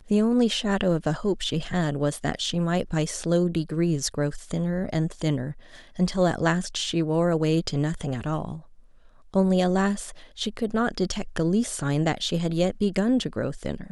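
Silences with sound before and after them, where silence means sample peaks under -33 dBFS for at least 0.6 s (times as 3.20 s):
8.58–9.34 s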